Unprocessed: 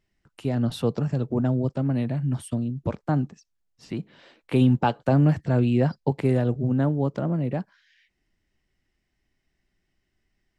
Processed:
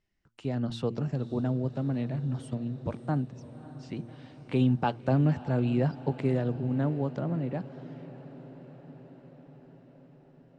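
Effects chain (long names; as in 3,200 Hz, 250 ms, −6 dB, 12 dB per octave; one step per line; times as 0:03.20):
low-pass filter 7,600 Hz 24 dB per octave
hum removal 115.2 Hz, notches 3
on a send: feedback delay with all-pass diffusion 589 ms, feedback 69%, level −16 dB
on the sum: level −5.5 dB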